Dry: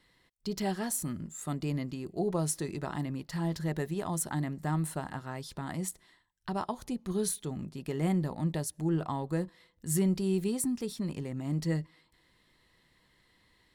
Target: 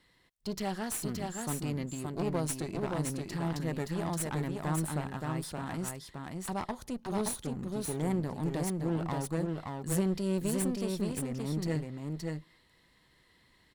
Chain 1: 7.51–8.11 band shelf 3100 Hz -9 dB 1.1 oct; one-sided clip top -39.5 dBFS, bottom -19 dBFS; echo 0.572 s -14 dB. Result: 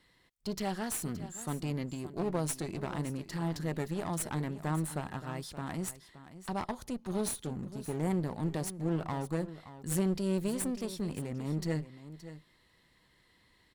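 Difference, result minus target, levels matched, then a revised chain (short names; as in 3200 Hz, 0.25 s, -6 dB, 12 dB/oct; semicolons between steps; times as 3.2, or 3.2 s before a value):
echo-to-direct -10.5 dB
7.51–8.11 band shelf 3100 Hz -9 dB 1.1 oct; one-sided clip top -39.5 dBFS, bottom -19 dBFS; echo 0.572 s -3.5 dB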